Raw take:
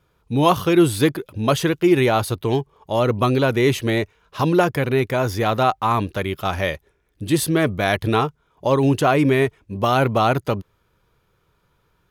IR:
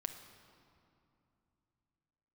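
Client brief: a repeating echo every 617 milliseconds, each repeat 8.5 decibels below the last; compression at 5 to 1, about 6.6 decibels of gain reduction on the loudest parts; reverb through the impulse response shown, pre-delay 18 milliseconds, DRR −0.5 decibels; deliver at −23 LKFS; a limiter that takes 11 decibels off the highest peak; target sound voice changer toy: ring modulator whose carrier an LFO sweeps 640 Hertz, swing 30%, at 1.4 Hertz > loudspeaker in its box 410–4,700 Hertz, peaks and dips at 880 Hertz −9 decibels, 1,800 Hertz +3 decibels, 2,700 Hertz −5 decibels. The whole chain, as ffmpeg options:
-filter_complex "[0:a]acompressor=threshold=-18dB:ratio=5,alimiter=limit=-19dB:level=0:latency=1,aecho=1:1:617|1234|1851|2468:0.376|0.143|0.0543|0.0206,asplit=2[link_01][link_02];[1:a]atrim=start_sample=2205,adelay=18[link_03];[link_02][link_03]afir=irnorm=-1:irlink=0,volume=1.5dB[link_04];[link_01][link_04]amix=inputs=2:normalize=0,aeval=exprs='val(0)*sin(2*PI*640*n/s+640*0.3/1.4*sin(2*PI*1.4*n/s))':channel_layout=same,highpass=410,equalizer=frequency=880:width_type=q:width=4:gain=-9,equalizer=frequency=1800:width_type=q:width=4:gain=3,equalizer=frequency=2700:width_type=q:width=4:gain=-5,lowpass=frequency=4700:width=0.5412,lowpass=frequency=4700:width=1.3066,volume=7.5dB"

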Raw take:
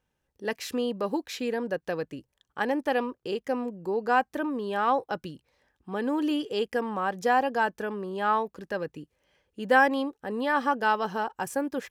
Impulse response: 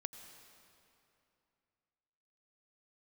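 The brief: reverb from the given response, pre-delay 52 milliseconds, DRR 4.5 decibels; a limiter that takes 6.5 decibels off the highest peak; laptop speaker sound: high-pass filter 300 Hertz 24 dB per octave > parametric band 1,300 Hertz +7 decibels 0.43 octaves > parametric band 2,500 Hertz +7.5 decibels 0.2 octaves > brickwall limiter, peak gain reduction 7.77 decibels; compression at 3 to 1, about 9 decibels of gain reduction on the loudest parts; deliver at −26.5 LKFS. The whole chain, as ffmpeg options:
-filter_complex "[0:a]acompressor=threshold=-27dB:ratio=3,alimiter=limit=-22.5dB:level=0:latency=1,asplit=2[link_01][link_02];[1:a]atrim=start_sample=2205,adelay=52[link_03];[link_02][link_03]afir=irnorm=-1:irlink=0,volume=-2dB[link_04];[link_01][link_04]amix=inputs=2:normalize=0,highpass=frequency=300:width=0.5412,highpass=frequency=300:width=1.3066,equalizer=frequency=1300:width_type=o:width=0.43:gain=7,equalizer=frequency=2500:width_type=o:width=0.2:gain=7.5,volume=7.5dB,alimiter=limit=-16dB:level=0:latency=1"

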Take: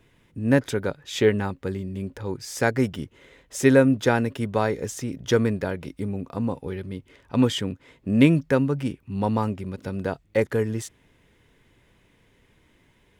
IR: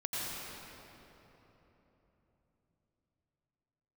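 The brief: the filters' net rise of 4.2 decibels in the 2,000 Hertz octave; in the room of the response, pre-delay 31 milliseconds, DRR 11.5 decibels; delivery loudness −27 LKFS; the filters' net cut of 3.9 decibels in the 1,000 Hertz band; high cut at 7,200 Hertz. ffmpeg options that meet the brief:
-filter_complex "[0:a]lowpass=7200,equalizer=frequency=1000:width_type=o:gain=-7.5,equalizer=frequency=2000:width_type=o:gain=8,asplit=2[link_01][link_02];[1:a]atrim=start_sample=2205,adelay=31[link_03];[link_02][link_03]afir=irnorm=-1:irlink=0,volume=-16.5dB[link_04];[link_01][link_04]amix=inputs=2:normalize=0,volume=-3dB"

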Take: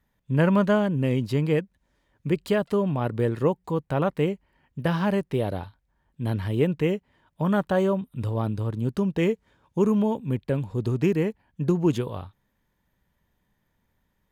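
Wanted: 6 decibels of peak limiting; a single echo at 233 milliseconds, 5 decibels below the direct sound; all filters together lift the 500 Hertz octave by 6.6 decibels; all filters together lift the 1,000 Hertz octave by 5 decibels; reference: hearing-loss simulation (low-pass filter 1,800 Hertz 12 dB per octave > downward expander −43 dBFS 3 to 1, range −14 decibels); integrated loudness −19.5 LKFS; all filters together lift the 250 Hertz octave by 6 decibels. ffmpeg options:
ffmpeg -i in.wav -af "equalizer=frequency=250:width_type=o:gain=7,equalizer=frequency=500:width_type=o:gain=5,equalizer=frequency=1000:width_type=o:gain=4.5,alimiter=limit=-10dB:level=0:latency=1,lowpass=1800,aecho=1:1:233:0.562,agate=range=-14dB:threshold=-43dB:ratio=3,volume=1dB" out.wav

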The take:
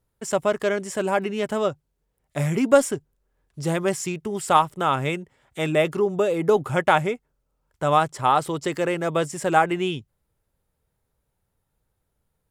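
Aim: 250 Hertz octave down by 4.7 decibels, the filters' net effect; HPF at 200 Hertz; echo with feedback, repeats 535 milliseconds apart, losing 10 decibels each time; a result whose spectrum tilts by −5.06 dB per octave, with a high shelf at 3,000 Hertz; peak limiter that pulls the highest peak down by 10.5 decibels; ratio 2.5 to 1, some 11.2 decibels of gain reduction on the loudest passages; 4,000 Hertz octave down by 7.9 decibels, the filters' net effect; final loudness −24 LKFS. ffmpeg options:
ffmpeg -i in.wav -af "highpass=200,equalizer=frequency=250:width_type=o:gain=-4.5,highshelf=frequency=3000:gain=-4.5,equalizer=frequency=4000:width_type=o:gain=-7.5,acompressor=threshold=-28dB:ratio=2.5,alimiter=limit=-23dB:level=0:latency=1,aecho=1:1:535|1070|1605|2140:0.316|0.101|0.0324|0.0104,volume=11dB" out.wav

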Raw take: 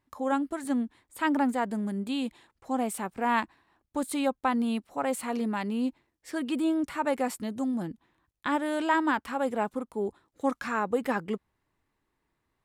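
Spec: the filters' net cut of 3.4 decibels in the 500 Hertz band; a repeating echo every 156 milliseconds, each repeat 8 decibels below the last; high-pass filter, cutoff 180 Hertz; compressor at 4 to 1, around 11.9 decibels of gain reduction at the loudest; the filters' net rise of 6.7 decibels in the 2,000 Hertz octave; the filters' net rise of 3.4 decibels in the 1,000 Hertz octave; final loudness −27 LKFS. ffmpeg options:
ffmpeg -i in.wav -af "highpass=180,equalizer=frequency=500:width_type=o:gain=-5.5,equalizer=frequency=1000:width_type=o:gain=4,equalizer=frequency=2000:width_type=o:gain=7.5,acompressor=threshold=-31dB:ratio=4,aecho=1:1:156|312|468|624|780:0.398|0.159|0.0637|0.0255|0.0102,volume=8dB" out.wav

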